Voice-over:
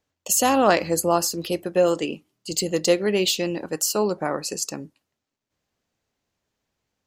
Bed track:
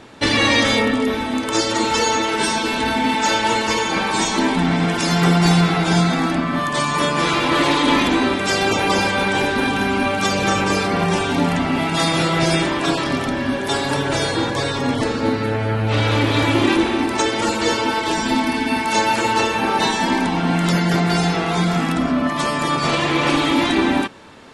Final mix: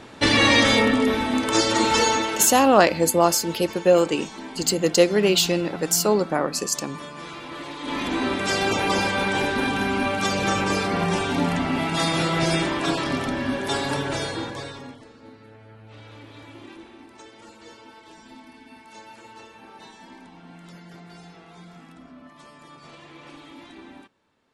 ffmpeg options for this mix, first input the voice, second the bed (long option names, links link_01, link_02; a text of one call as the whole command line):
ffmpeg -i stem1.wav -i stem2.wav -filter_complex "[0:a]adelay=2100,volume=2.5dB[link_01];[1:a]volume=13.5dB,afade=type=out:start_time=2.01:duration=0.6:silence=0.125893,afade=type=in:start_time=7.78:duration=0.63:silence=0.188365,afade=type=out:start_time=13.84:duration=1.16:silence=0.0749894[link_02];[link_01][link_02]amix=inputs=2:normalize=0" out.wav